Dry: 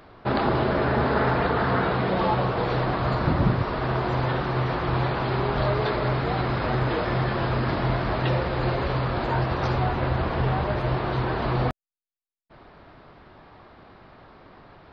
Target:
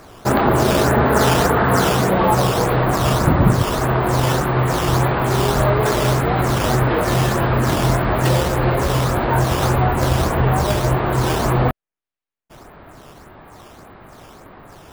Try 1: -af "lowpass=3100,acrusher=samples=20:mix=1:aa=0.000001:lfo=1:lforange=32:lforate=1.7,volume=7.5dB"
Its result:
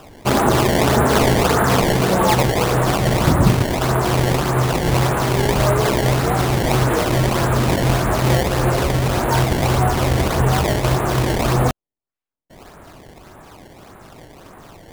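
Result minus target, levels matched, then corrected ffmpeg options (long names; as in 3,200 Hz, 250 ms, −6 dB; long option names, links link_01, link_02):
sample-and-hold swept by an LFO: distortion +9 dB
-af "lowpass=3100,acrusher=samples=6:mix=1:aa=0.000001:lfo=1:lforange=9.6:lforate=1.7,volume=7.5dB"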